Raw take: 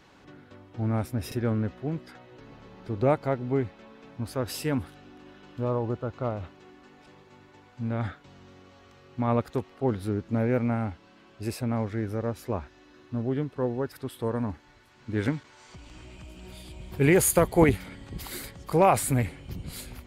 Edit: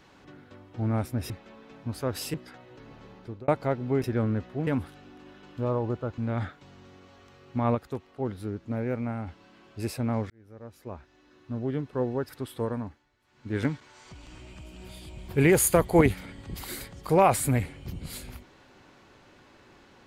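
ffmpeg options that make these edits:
-filter_complex "[0:a]asplit=12[s0][s1][s2][s3][s4][s5][s6][s7][s8][s9][s10][s11];[s0]atrim=end=1.302[s12];[s1]atrim=start=3.628:end=4.672[s13];[s2]atrim=start=1.948:end=3.09,asetpts=PTS-STARTPTS,afade=t=out:st=0.772:d=0.37[s14];[s3]atrim=start=3.09:end=3.632,asetpts=PTS-STARTPTS,afade=t=in:d=0.004:c=hsin[s15];[s4]atrim=start=1.298:end=1.952[s16];[s5]atrim=start=4.668:end=6.182[s17];[s6]atrim=start=7.808:end=9.382[s18];[s7]atrim=start=9.378:end=10.902,asetpts=PTS-STARTPTS,volume=0.562[s19];[s8]atrim=start=10.898:end=11.93,asetpts=PTS-STARTPTS,afade=t=out:st=1.028:d=0.004:c=hsin[s20];[s9]atrim=start=11.93:end=14.69,asetpts=PTS-STARTPTS,afade=t=in:d=1.74,afade=t=out:st=2.29:d=0.47:silence=0.177828[s21];[s10]atrim=start=14.69:end=14.82,asetpts=PTS-STARTPTS,volume=0.178[s22];[s11]atrim=start=14.82,asetpts=PTS-STARTPTS,afade=t=in:d=0.47:silence=0.177828[s23];[s12][s13]acrossfade=d=0.004:c1=hsin:c2=hsin[s24];[s14][s15]concat=n=2:v=0:a=1[s25];[s24][s25]acrossfade=d=0.004:c1=hsin:c2=hsin[s26];[s26][s16]acrossfade=d=0.004:c1=hsin:c2=hsin[s27];[s27][s17]acrossfade=d=0.004:c1=hsin:c2=hsin[s28];[s28][s18]acrossfade=d=0.004:c1=hsin:c2=hsin[s29];[s29][s19]acrossfade=d=0.004:c1=hsin:c2=hsin[s30];[s20][s21][s22][s23]concat=n=4:v=0:a=1[s31];[s30][s31]acrossfade=d=0.004:c1=hsin:c2=hsin"

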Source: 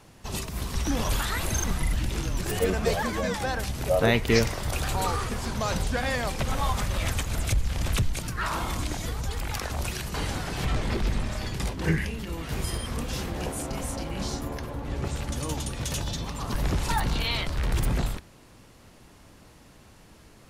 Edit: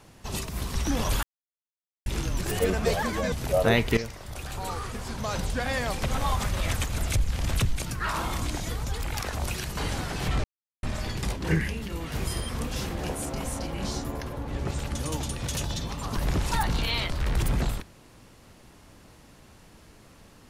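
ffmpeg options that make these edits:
-filter_complex "[0:a]asplit=7[s0][s1][s2][s3][s4][s5][s6];[s0]atrim=end=1.23,asetpts=PTS-STARTPTS,afade=t=out:st=1.226:d=0.004:c=hsin[s7];[s1]atrim=start=1.23:end=2.06,asetpts=PTS-STARTPTS,volume=0[s8];[s2]atrim=start=2.06:end=3.322,asetpts=PTS-STARTPTS,afade=t=in:d=0.004:c=hsin[s9];[s3]atrim=start=3.688:end=4.34,asetpts=PTS-STARTPTS,afade=t=out:st=0.648:d=0.004:c=hsin:silence=0.211349[s10];[s4]atrim=start=4.34:end=10.81,asetpts=PTS-STARTPTS,afade=t=in:d=2.01:silence=0.211349,afade=t=out:st=6.466:d=0.004:c=hsin[s11];[s5]atrim=start=10.81:end=11.2,asetpts=PTS-STARTPTS,volume=0[s12];[s6]atrim=start=11.2,asetpts=PTS-STARTPTS,afade=t=in:d=0.004:c=hsin[s13];[s7][s8][s9]concat=n=3:v=0:a=1[s14];[s10][s11][s12][s13]concat=n=4:v=0:a=1[s15];[s14][s15]acrossfade=d=0.004:c1=hsin:c2=hsin"

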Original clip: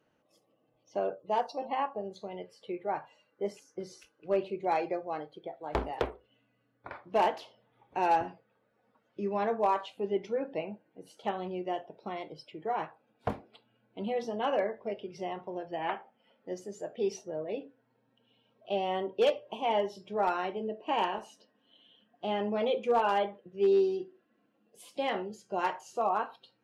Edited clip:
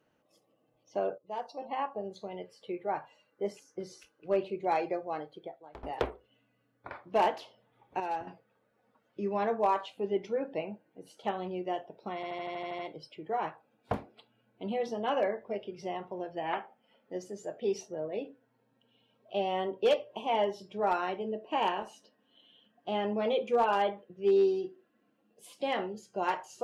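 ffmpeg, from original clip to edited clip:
-filter_complex "[0:a]asplit=13[s0][s1][s2][s3][s4][s5][s6][s7][s8][s9][s10][s11][s12];[s0]atrim=end=1.18,asetpts=PTS-STARTPTS,afade=t=out:st=1.176:d=0.004:c=hsin:silence=0.223872[s13];[s1]atrim=start=1.18:end=5.83,asetpts=PTS-STARTPTS,afade=t=in:d=0.87:silence=0.223872,afade=t=out:st=4.25:d=0.4:c=qua:silence=0.0944061[s14];[s2]atrim=start=5.83:end=8.002,asetpts=PTS-STARTPTS,afade=t=in:d=0.004:c=hsin:silence=0.0944061[s15];[s3]atrim=start=7.998:end=8.272,asetpts=PTS-STARTPTS,volume=0.376[s16];[s4]atrim=start=8.268:end=12.232[s17];[s5]atrim=start=12.148:end=12.232[s18];[s6]atrim=start=12.148:end=12.232[s19];[s7]atrim=start=12.148:end=12.232[s20];[s8]atrim=start=12.148:end=12.232[s21];[s9]atrim=start=12.148:end=12.232[s22];[s10]atrim=start=12.148:end=12.232[s23];[s11]atrim=start=12.148:end=12.232[s24];[s12]atrim=start=12.148[s25];[s13][s14][s15]concat=n=3:v=0:a=1[s26];[s26][s16]acrossfade=d=0.004:c1=hsin:c2=hsin[s27];[s27][s17]acrossfade=d=0.004:c1=hsin:c2=hsin[s28];[s28][s18]acrossfade=d=0.004:c1=hsin:c2=hsin[s29];[s29][s19]acrossfade=d=0.004:c1=hsin:c2=hsin[s30];[s30][s20]acrossfade=d=0.004:c1=hsin:c2=hsin[s31];[s31][s21]acrossfade=d=0.004:c1=hsin:c2=hsin[s32];[s32][s22]acrossfade=d=0.004:c1=hsin:c2=hsin[s33];[s33][s23]acrossfade=d=0.004:c1=hsin:c2=hsin[s34];[s34][s24]acrossfade=d=0.004:c1=hsin:c2=hsin[s35];[s35][s25]acrossfade=d=0.004:c1=hsin:c2=hsin"

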